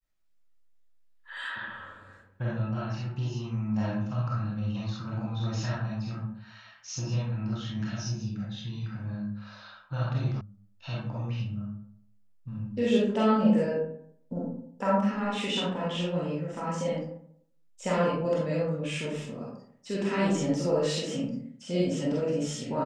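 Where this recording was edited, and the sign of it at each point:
10.41 s: sound stops dead

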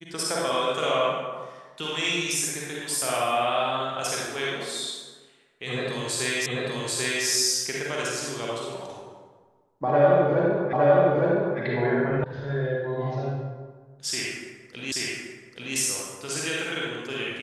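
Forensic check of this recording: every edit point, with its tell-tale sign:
6.46 s: repeat of the last 0.79 s
10.73 s: repeat of the last 0.86 s
12.24 s: sound stops dead
14.92 s: repeat of the last 0.83 s

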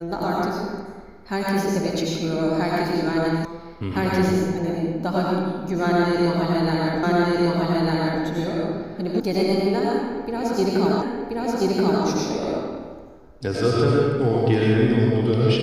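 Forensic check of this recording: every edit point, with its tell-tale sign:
3.45 s: sound stops dead
7.03 s: repeat of the last 1.2 s
9.20 s: sound stops dead
11.02 s: repeat of the last 1.03 s

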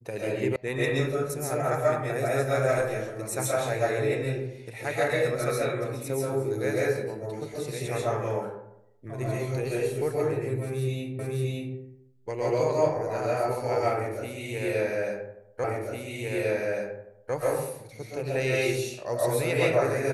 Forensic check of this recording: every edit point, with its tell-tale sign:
0.56 s: sound stops dead
11.19 s: repeat of the last 0.57 s
15.64 s: repeat of the last 1.7 s

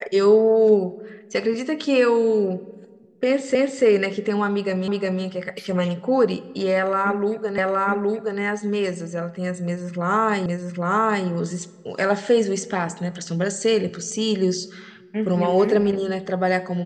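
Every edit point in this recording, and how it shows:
3.55 s: repeat of the last 0.29 s
4.88 s: repeat of the last 0.36 s
7.58 s: repeat of the last 0.82 s
10.46 s: repeat of the last 0.81 s

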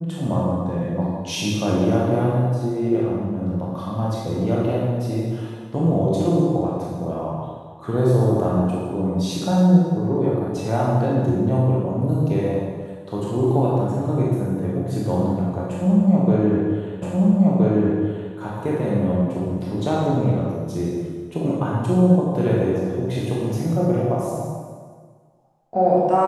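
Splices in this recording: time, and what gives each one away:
17.02 s: repeat of the last 1.32 s

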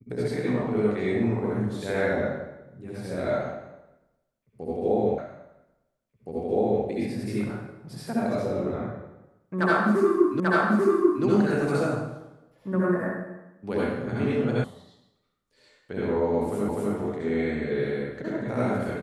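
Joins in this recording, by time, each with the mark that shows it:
5.18 s: repeat of the last 1.67 s
10.40 s: repeat of the last 0.84 s
14.64 s: sound stops dead
16.69 s: repeat of the last 0.25 s

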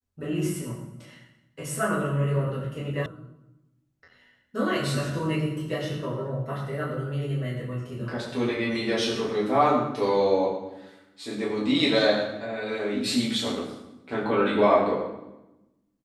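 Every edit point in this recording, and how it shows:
3.06 s: sound stops dead

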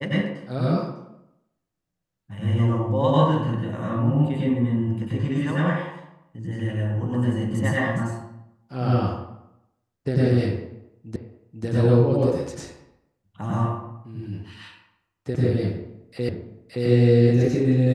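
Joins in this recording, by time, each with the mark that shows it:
11.16 s: repeat of the last 0.49 s
16.29 s: repeat of the last 0.57 s

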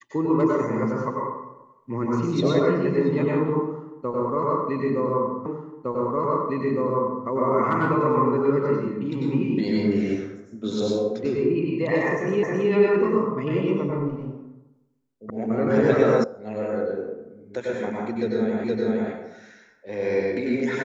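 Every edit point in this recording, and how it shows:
5.46 s: repeat of the last 1.81 s
12.43 s: repeat of the last 0.27 s
15.30 s: sound stops dead
16.24 s: sound stops dead
18.64 s: repeat of the last 0.47 s

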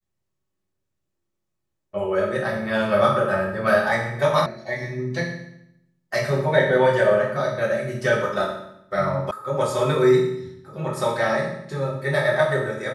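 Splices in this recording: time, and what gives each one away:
4.46 s: sound stops dead
9.31 s: sound stops dead

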